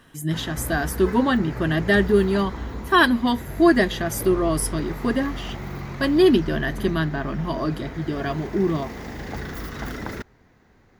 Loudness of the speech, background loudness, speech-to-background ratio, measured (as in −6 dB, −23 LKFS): −22.0 LKFS, −34.0 LKFS, 12.0 dB